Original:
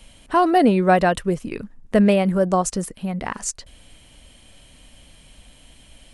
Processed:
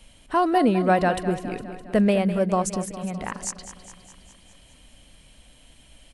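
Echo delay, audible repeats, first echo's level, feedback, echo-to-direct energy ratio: 0.205 s, 6, -12.0 dB, 60%, -10.0 dB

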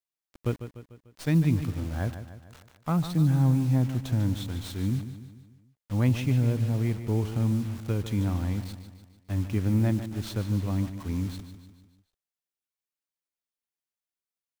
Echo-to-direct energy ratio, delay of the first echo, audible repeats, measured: -9.5 dB, 0.148 s, 5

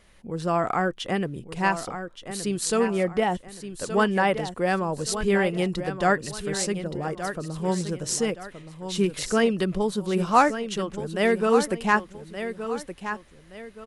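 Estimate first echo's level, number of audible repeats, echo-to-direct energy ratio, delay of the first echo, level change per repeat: -10.0 dB, 2, -9.5 dB, 1.172 s, -9.5 dB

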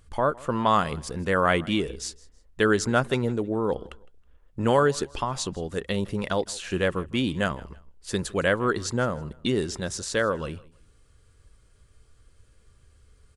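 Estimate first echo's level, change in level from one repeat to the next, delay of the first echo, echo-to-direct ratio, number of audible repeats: -22.5 dB, -10.0 dB, 0.16 s, -22.0 dB, 2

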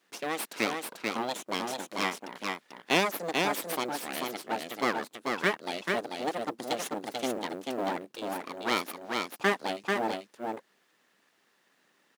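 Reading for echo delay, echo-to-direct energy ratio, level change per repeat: 0.44 s, -3.5 dB, no steady repeat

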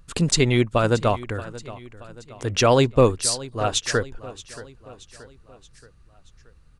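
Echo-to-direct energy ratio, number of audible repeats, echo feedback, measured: -16.5 dB, 3, 50%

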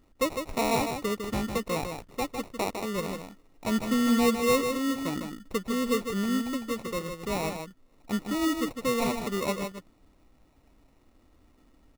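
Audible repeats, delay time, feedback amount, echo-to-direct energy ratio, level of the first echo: 1, 0.154 s, no steady repeat, -6.5 dB, -6.5 dB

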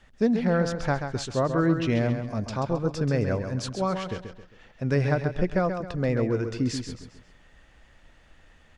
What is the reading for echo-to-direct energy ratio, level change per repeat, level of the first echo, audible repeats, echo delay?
-7.0 dB, -8.5 dB, -7.5 dB, 4, 0.134 s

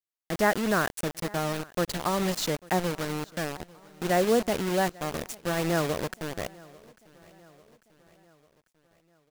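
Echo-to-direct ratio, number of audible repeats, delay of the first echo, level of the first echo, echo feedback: -22.0 dB, 3, 0.845 s, -23.5 dB, 54%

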